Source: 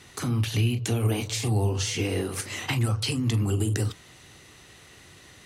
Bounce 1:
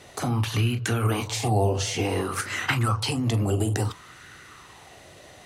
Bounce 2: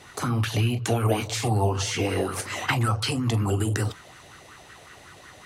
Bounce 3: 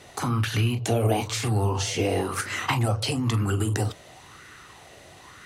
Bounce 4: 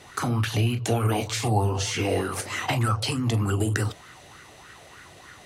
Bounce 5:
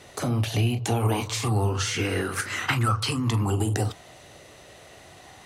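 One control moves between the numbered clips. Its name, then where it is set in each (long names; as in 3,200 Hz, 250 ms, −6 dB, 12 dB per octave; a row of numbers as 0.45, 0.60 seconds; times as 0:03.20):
auto-filter bell, speed: 0.58, 5.4, 1, 3.3, 0.22 Hertz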